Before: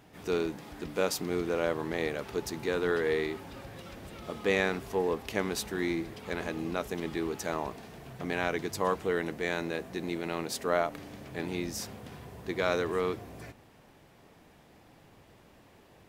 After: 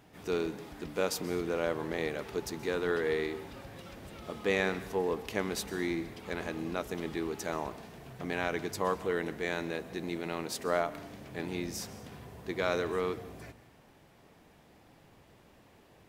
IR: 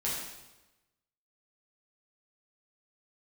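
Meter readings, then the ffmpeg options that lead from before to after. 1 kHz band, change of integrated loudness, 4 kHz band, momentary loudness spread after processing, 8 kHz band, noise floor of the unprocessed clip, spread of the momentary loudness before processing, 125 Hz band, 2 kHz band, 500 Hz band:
−2.0 dB, −2.0 dB, −2.0 dB, 14 LU, −2.0 dB, −58 dBFS, 14 LU, −2.0 dB, −2.0 dB, −2.0 dB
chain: -filter_complex "[0:a]asplit=2[link_01][link_02];[1:a]atrim=start_sample=2205,atrim=end_sample=6174,adelay=126[link_03];[link_02][link_03]afir=irnorm=-1:irlink=0,volume=-21.5dB[link_04];[link_01][link_04]amix=inputs=2:normalize=0,volume=-2dB"

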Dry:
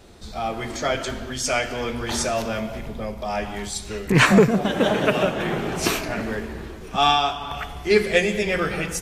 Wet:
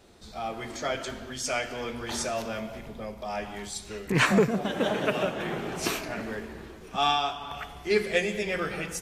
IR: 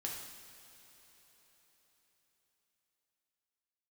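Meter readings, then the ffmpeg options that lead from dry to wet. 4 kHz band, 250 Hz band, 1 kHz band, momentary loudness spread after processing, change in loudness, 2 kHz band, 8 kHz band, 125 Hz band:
−6.5 dB, −7.5 dB, −6.5 dB, 13 LU, −7.0 dB, −6.5 dB, −6.5 dB, −8.5 dB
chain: -af "lowshelf=frequency=100:gain=-7,volume=-6.5dB"

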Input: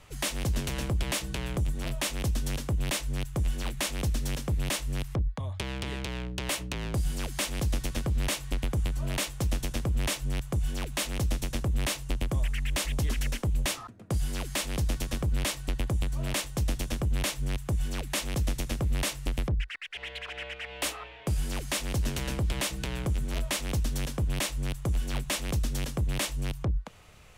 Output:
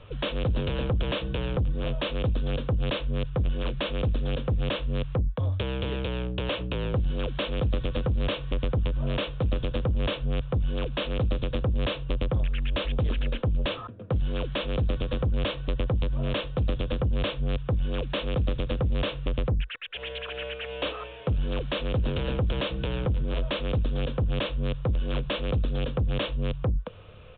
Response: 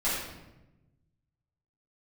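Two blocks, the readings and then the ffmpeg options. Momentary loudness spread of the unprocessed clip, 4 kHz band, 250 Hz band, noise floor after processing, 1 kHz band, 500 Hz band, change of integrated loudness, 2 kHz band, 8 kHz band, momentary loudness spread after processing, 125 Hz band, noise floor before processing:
4 LU, +0.5 dB, +3.0 dB, −39 dBFS, +2.0 dB, +8.0 dB, +2.5 dB, −0.5 dB, below −40 dB, 3 LU, +3.0 dB, −44 dBFS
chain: -af "equalizer=frequency=100:width_type=o:width=0.33:gain=7,equalizer=frequency=500:width_type=o:width=0.33:gain=11,equalizer=frequency=800:width_type=o:width=0.33:gain=-7,equalizer=frequency=2000:width_type=o:width=0.33:gain=-11,aresample=8000,asoftclip=type=tanh:threshold=-25.5dB,aresample=44100,volume=5dB"

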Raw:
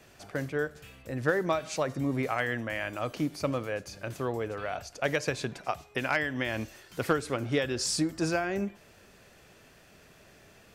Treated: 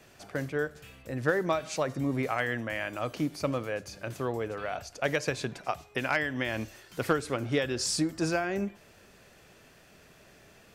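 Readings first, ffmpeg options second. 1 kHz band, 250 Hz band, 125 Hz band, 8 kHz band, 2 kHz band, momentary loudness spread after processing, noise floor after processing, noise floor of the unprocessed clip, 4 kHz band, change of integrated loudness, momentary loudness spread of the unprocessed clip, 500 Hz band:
0.0 dB, 0.0 dB, 0.0 dB, 0.0 dB, 0.0 dB, 8 LU, −57 dBFS, −57 dBFS, 0.0 dB, 0.0 dB, 8 LU, 0.0 dB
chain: -af "bandreject=frequency=50:width_type=h:width=6,bandreject=frequency=100:width_type=h:width=6"

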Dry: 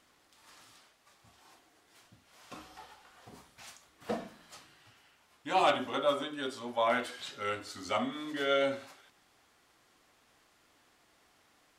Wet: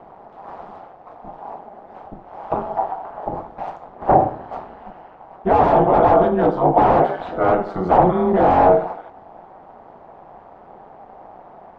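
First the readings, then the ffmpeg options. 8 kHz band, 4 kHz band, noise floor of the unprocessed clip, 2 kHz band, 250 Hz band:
below −10 dB, can't be measured, −68 dBFS, +5.5 dB, +18.0 dB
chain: -af "aeval=exprs='val(0)*sin(2*PI*93*n/s)':channel_layout=same,aeval=exprs='0.168*sin(PI/2*7.94*val(0)/0.168)':channel_layout=same,lowpass=frequency=770:width_type=q:width=3.9,volume=3.5dB"

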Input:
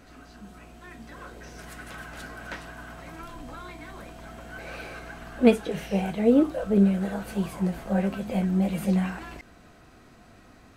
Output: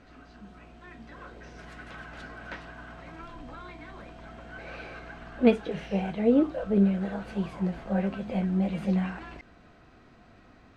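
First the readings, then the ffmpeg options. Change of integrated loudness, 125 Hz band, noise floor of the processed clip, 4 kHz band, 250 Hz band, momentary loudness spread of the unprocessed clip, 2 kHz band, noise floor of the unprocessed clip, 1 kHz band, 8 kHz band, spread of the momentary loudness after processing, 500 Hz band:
−2.5 dB, −2.5 dB, −56 dBFS, −4.0 dB, −2.5 dB, 22 LU, −2.5 dB, −53 dBFS, −2.5 dB, can't be measured, 22 LU, −2.5 dB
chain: -af "lowpass=4200,volume=-2.5dB"

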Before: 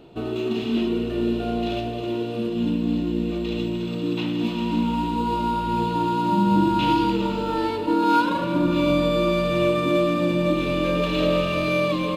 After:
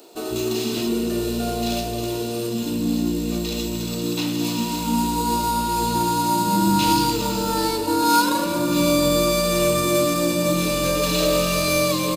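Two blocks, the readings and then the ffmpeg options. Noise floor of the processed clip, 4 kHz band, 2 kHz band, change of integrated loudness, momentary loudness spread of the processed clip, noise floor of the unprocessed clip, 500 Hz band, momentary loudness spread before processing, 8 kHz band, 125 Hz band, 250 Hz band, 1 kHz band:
−27 dBFS, +6.5 dB, +1.5 dB, +1.5 dB, 7 LU, −28 dBFS, +1.0 dB, 7 LU, can't be measured, +0.5 dB, 0.0 dB, +2.0 dB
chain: -filter_complex "[0:a]aexciter=amount=9.3:drive=5.3:freq=4600,acrossover=split=280[link_01][link_02];[link_01]adelay=150[link_03];[link_03][link_02]amix=inputs=2:normalize=0,aeval=exprs='0.501*(cos(1*acos(clip(val(0)/0.501,-1,1)))-cos(1*PI/2))+0.0355*(cos(3*acos(clip(val(0)/0.501,-1,1)))-cos(3*PI/2))':channel_layout=same,asplit=2[link_04][link_05];[link_05]asoftclip=type=tanh:threshold=-21.5dB,volume=-5dB[link_06];[link_04][link_06]amix=inputs=2:normalize=0,volume=1dB"

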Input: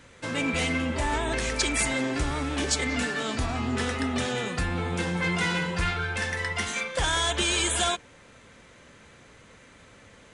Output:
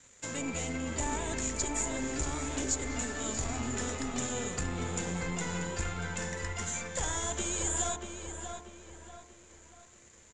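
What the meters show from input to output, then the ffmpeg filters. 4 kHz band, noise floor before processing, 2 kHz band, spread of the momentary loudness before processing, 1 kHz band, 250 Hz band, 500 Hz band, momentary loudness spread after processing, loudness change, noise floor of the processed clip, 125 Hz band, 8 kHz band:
−13.0 dB, −53 dBFS, −11.5 dB, 5 LU, −8.0 dB, −6.5 dB, −6.5 dB, 10 LU, −7.0 dB, −58 dBFS, −6.5 dB, −0.5 dB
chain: -filter_complex "[0:a]aeval=exprs='(tanh(7.94*val(0)+0.5)-tanh(0.5))/7.94':channel_layout=same,acrossover=split=460|1200[link_01][link_02][link_03];[link_03]acompressor=threshold=-39dB:ratio=6[link_04];[link_01][link_02][link_04]amix=inputs=3:normalize=0,aeval=exprs='sgn(val(0))*max(abs(val(0))-0.00119,0)':channel_layout=same,lowpass=frequency=7100:width_type=q:width=16,bandreject=frequency=50.14:width_type=h:width=4,bandreject=frequency=100.28:width_type=h:width=4,bandreject=frequency=150.42:width_type=h:width=4,bandreject=frequency=200.56:width_type=h:width=4,bandreject=frequency=250.7:width_type=h:width=4,bandreject=frequency=300.84:width_type=h:width=4,bandreject=frequency=350.98:width_type=h:width=4,bandreject=frequency=401.12:width_type=h:width=4,bandreject=frequency=451.26:width_type=h:width=4,bandreject=frequency=501.4:width_type=h:width=4,bandreject=frequency=551.54:width_type=h:width=4,bandreject=frequency=601.68:width_type=h:width=4,bandreject=frequency=651.82:width_type=h:width=4,bandreject=frequency=701.96:width_type=h:width=4,bandreject=frequency=752.1:width_type=h:width=4,bandreject=frequency=802.24:width_type=h:width=4,bandreject=frequency=852.38:width_type=h:width=4,bandreject=frequency=902.52:width_type=h:width=4,bandreject=frequency=952.66:width_type=h:width=4,bandreject=frequency=1002.8:width_type=h:width=4,bandreject=frequency=1052.94:width_type=h:width=4,bandreject=frequency=1103.08:width_type=h:width=4,bandreject=frequency=1153.22:width_type=h:width=4,bandreject=frequency=1203.36:width_type=h:width=4,bandreject=frequency=1253.5:width_type=h:width=4,bandreject=frequency=1303.64:width_type=h:width=4,bandreject=frequency=1353.78:width_type=h:width=4,bandreject=frequency=1403.92:width_type=h:width=4,asplit=2[link_05][link_06];[link_06]adelay=637,lowpass=frequency=3500:poles=1,volume=-6dB,asplit=2[link_07][link_08];[link_08]adelay=637,lowpass=frequency=3500:poles=1,volume=0.42,asplit=2[link_09][link_10];[link_10]adelay=637,lowpass=frequency=3500:poles=1,volume=0.42,asplit=2[link_11][link_12];[link_12]adelay=637,lowpass=frequency=3500:poles=1,volume=0.42,asplit=2[link_13][link_14];[link_14]adelay=637,lowpass=frequency=3500:poles=1,volume=0.42[link_15];[link_07][link_09][link_11][link_13][link_15]amix=inputs=5:normalize=0[link_16];[link_05][link_16]amix=inputs=2:normalize=0,volume=-4.5dB"

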